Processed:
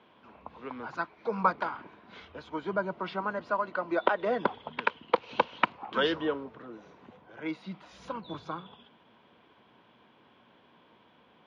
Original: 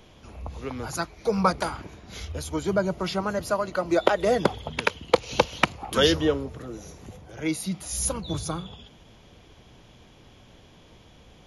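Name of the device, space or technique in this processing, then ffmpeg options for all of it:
kitchen radio: -af "highpass=220,equalizer=frequency=230:width_type=q:width=4:gain=4,equalizer=frequency=1000:width_type=q:width=4:gain=9,equalizer=frequency=1500:width_type=q:width=4:gain=6,lowpass=frequency=3500:width=0.5412,lowpass=frequency=3500:width=1.3066,volume=-7.5dB"

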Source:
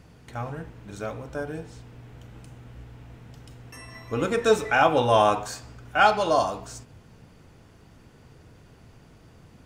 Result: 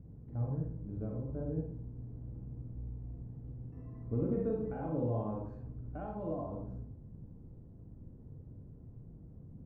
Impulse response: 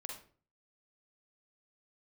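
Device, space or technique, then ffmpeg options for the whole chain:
television next door: -filter_complex "[0:a]acompressor=threshold=-25dB:ratio=4,lowpass=260[link_01];[1:a]atrim=start_sample=2205[link_02];[link_01][link_02]afir=irnorm=-1:irlink=0,asettb=1/sr,asplit=3[link_03][link_04][link_05];[link_03]atrim=end=4.284[link_06];[link_04]atrim=start=4.28:end=5.49,asetpts=PTS-STARTPTS,afade=type=in:duration=0.004:curve=qsin,afade=type=out:start_time=1.206:duration=0.004:curve=qsin,asplit=2[link_07][link_08];[link_08]adelay=37,volume=-6.5dB[link_09];[link_07][link_09]amix=inputs=2:normalize=0,atrim=end_sample=53361[link_10];[link_05]atrim=start=5.486[link_11];[link_06][link_10]acrossfade=duration=0.004:curve1=hsin:curve2=qsin[link_12];[link_12][link_11]acrossfade=duration=0.004:curve1=qsin:curve2=hsin,volume=5.5dB"

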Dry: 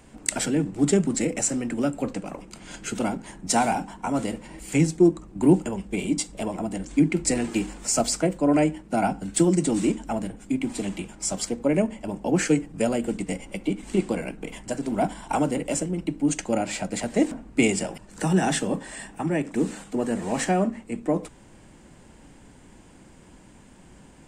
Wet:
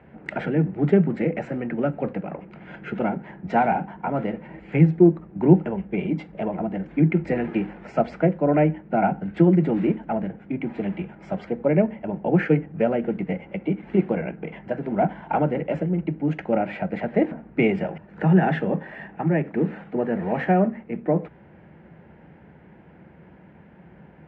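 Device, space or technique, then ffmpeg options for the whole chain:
bass cabinet: -af "highpass=frequency=73:width=0.5412,highpass=frequency=73:width=1.3066,equalizer=frequency=110:width_type=q:width=4:gain=-7,equalizer=frequency=160:width_type=q:width=4:gain=5,equalizer=frequency=270:width_type=q:width=4:gain=-9,equalizer=frequency=1100:width_type=q:width=4:gain=-8,lowpass=frequency=2100:width=0.5412,lowpass=frequency=2100:width=1.3066,volume=4dB"

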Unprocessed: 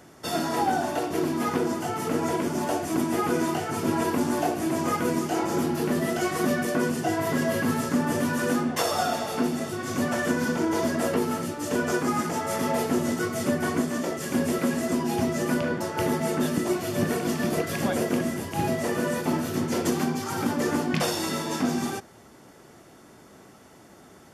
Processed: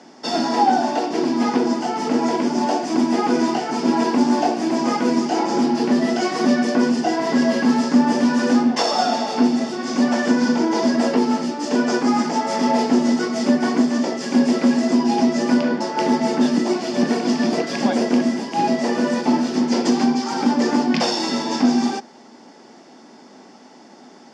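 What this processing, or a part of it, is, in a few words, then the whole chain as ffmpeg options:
television speaker: -af "highpass=frequency=200:width=0.5412,highpass=frequency=200:width=1.3066,equalizer=frequency=240:width_type=q:width=4:gain=8,equalizer=frequency=840:width_type=q:width=4:gain=7,equalizer=frequency=1300:width_type=q:width=4:gain=-4,equalizer=frequency=5000:width_type=q:width=4:gain=9,lowpass=frequency=6700:width=0.5412,lowpass=frequency=6700:width=1.3066,volume=4dB"

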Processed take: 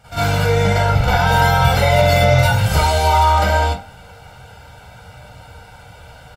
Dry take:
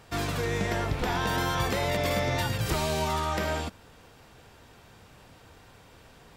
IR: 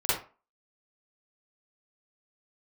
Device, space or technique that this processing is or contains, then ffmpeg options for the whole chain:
microphone above a desk: -filter_complex "[0:a]aecho=1:1:1.4:0.88[link_01];[1:a]atrim=start_sample=2205[link_02];[link_01][link_02]afir=irnorm=-1:irlink=0,volume=-1dB"

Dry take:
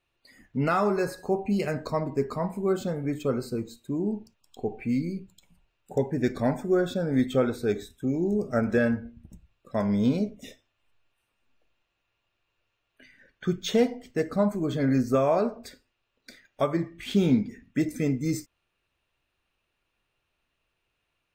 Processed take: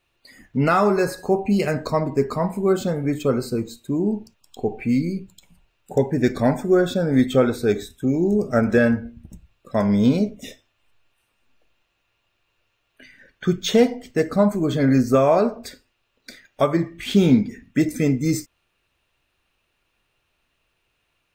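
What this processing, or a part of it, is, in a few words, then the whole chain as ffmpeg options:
exciter from parts: -filter_complex "[0:a]asplit=2[link_01][link_02];[link_02]highpass=frequency=3500:poles=1,asoftclip=type=tanh:threshold=-37dB,volume=-11dB[link_03];[link_01][link_03]amix=inputs=2:normalize=0,volume=6.5dB"

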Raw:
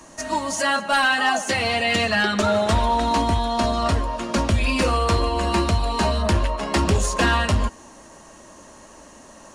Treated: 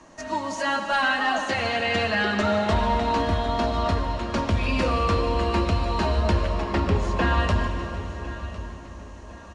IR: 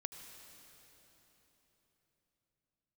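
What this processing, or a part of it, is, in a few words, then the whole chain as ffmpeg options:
swimming-pool hall: -filter_complex "[0:a]lowpass=5900,asettb=1/sr,asplit=3[link_01][link_02][link_03];[link_01]atrim=end=6.624[link_04];[link_02]atrim=start=6.62:end=7.38,asetpts=PTS-STARTPTS,afade=type=in:duration=0.004:curve=qsin,afade=type=out:start_time=0.756:duration=0.004:curve=qsin,highshelf=frequency=4600:gain=-11.5[link_05];[link_03]atrim=start=7.376[link_06];[link_04][link_05]acrossfade=duration=0.004:curve1=hsin:curve2=qsin[link_07];[link_07][link_06]acrossfade=duration=0.004:curve1=qsin:curve2=hsin[link_08];[1:a]atrim=start_sample=2205[link_09];[link_08][link_09]afir=irnorm=-1:irlink=0,highshelf=frequency=4600:gain=-5.5,aecho=1:1:1054|2108|3162:0.15|0.0569|0.0216"

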